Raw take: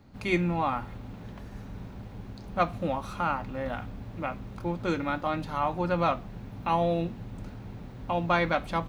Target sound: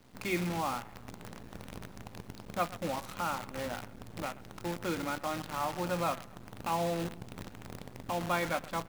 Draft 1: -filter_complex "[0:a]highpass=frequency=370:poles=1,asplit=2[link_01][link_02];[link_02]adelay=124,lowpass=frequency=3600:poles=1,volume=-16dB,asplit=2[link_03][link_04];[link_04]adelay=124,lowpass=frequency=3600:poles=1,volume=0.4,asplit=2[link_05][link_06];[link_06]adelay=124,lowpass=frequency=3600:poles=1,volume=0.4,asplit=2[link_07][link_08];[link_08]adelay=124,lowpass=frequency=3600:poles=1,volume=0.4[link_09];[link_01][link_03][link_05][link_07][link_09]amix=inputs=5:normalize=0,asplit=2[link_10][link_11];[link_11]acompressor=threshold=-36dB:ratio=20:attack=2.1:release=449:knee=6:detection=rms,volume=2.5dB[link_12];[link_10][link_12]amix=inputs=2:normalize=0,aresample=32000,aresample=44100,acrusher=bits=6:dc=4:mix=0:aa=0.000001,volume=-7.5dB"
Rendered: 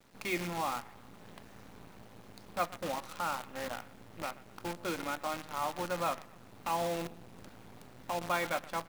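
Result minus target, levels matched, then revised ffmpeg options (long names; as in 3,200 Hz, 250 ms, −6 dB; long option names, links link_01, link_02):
125 Hz band −5.5 dB
-filter_complex "[0:a]highpass=frequency=100:poles=1,asplit=2[link_01][link_02];[link_02]adelay=124,lowpass=frequency=3600:poles=1,volume=-16dB,asplit=2[link_03][link_04];[link_04]adelay=124,lowpass=frequency=3600:poles=1,volume=0.4,asplit=2[link_05][link_06];[link_06]adelay=124,lowpass=frequency=3600:poles=1,volume=0.4,asplit=2[link_07][link_08];[link_08]adelay=124,lowpass=frequency=3600:poles=1,volume=0.4[link_09];[link_01][link_03][link_05][link_07][link_09]amix=inputs=5:normalize=0,asplit=2[link_10][link_11];[link_11]acompressor=threshold=-36dB:ratio=20:attack=2.1:release=449:knee=6:detection=rms,volume=2.5dB[link_12];[link_10][link_12]amix=inputs=2:normalize=0,aresample=32000,aresample=44100,acrusher=bits=6:dc=4:mix=0:aa=0.000001,volume=-7.5dB"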